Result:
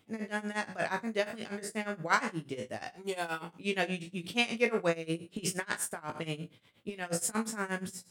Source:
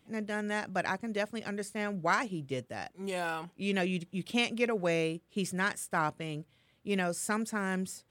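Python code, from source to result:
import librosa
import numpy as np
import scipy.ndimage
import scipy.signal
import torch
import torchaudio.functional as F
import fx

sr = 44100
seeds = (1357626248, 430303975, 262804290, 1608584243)

y = fx.spec_trails(x, sr, decay_s=0.36)
y = fx.low_shelf(y, sr, hz=110.0, db=-4.0)
y = fx.hum_notches(y, sr, base_hz=60, count=3)
y = fx.over_compress(y, sr, threshold_db=-34.0, ratio=-0.5, at=(4.93, 7.35))
y = y * (1.0 - 0.88 / 2.0 + 0.88 / 2.0 * np.cos(2.0 * np.pi * 8.4 * (np.arange(len(y)) / sr)))
y = fx.doubler(y, sr, ms=18.0, db=-9.0)
y = y * 10.0 ** (2.0 / 20.0)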